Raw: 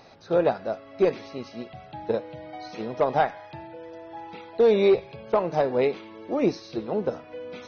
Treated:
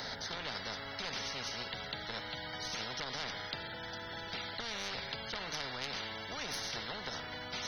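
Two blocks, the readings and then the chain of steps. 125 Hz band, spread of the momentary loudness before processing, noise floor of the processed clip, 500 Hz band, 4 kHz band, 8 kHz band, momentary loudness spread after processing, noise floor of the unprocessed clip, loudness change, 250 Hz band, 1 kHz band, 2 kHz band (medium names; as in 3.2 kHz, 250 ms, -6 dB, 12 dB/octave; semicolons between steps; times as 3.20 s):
-11.0 dB, 19 LU, -45 dBFS, -23.5 dB, +6.5 dB, no reading, 3 LU, -47 dBFS, -14.0 dB, -19.0 dB, -12.5 dB, -1.0 dB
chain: tracing distortion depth 0.029 ms; peak limiter -20 dBFS, peak gain reduction 9 dB; static phaser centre 1.7 kHz, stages 8; spectrum-flattening compressor 10:1; trim -1.5 dB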